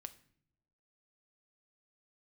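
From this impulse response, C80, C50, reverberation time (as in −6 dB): 20.0 dB, 16.5 dB, non-exponential decay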